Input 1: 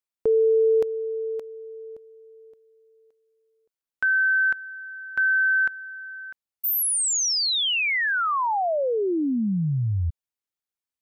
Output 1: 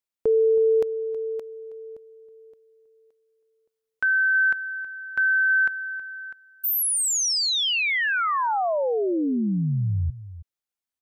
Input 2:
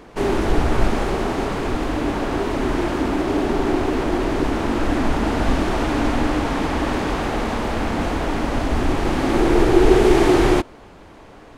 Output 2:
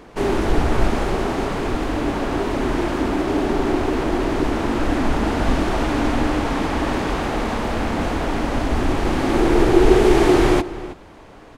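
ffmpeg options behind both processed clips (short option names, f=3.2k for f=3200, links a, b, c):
-filter_complex "[0:a]asplit=2[a][b];[b]adelay=320.7,volume=-15dB,highshelf=f=4k:g=-7.22[c];[a][c]amix=inputs=2:normalize=0"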